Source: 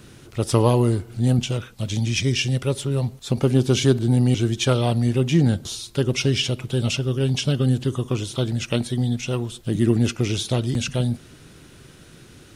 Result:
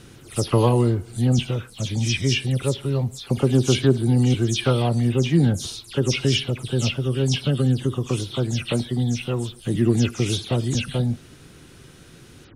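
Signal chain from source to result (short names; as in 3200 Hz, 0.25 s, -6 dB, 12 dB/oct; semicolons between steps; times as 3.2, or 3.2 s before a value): spectral delay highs early, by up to 0.113 s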